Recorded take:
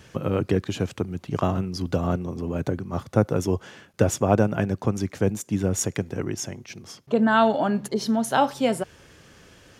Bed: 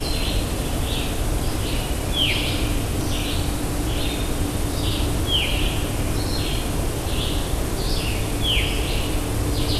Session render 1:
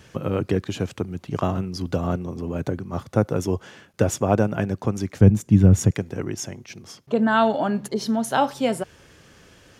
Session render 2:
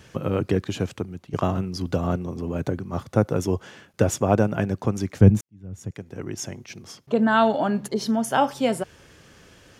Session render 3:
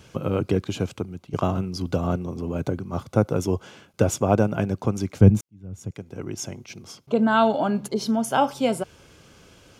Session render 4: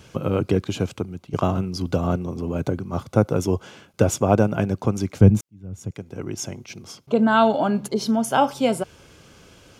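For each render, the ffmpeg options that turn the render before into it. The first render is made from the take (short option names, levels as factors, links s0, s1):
-filter_complex "[0:a]asettb=1/sr,asplit=3[s0][s1][s2];[s0]atrim=end=5.214[s3];[s1]atrim=start=5.21:end=5.91,asetpts=PTS-STARTPTS,afade=t=in:d=0.004:c=qsin,afade=t=out:st=0.696:d=0.004:c=qsin,bass=f=250:g=14,treble=f=4000:g=-4[s4];[s2]atrim=start=5.906[s5];[s3][s4]acrossfade=d=0.004:c1=hsin:c2=qsin[s6];[s6][s5]acrossfade=d=0.004:c1=qsin:c2=hsin"
-filter_complex "[0:a]asettb=1/sr,asplit=3[s0][s1][s2];[s0]atrim=end=8.114[s3];[s1]atrim=start=8.11:end=8.52,asetpts=PTS-STARTPTS,afade=t=in:d=0.004:c=qsin,afade=t=out:st=0.406:d=0.004:c=qsin,asuperstop=centerf=4000:order=4:qfactor=5.7[s4];[s2]atrim=start=8.516[s5];[s3][s4]acrossfade=d=0.004:c1=hsin:c2=qsin[s6];[s6][s5]acrossfade=d=0.004:c1=qsin:c2=hsin,asplit=3[s7][s8][s9];[s7]atrim=end=1.33,asetpts=PTS-STARTPTS,afade=t=out:st=0.86:d=0.47:silence=0.298538[s10];[s8]atrim=start=1.33:end=5.41,asetpts=PTS-STARTPTS,afade=t=in:d=0.004:c=hsin:silence=0.298538,afade=t=out:st=4.076:d=0.004:c=hsin[s11];[s9]atrim=start=5.41,asetpts=PTS-STARTPTS,afade=t=in:d=1.07:c=qua[s12];[s10][s11][s12]concat=n=3:v=0:a=1"
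-af "bandreject=f=1800:w=5.1"
-af "volume=1.26,alimiter=limit=0.708:level=0:latency=1"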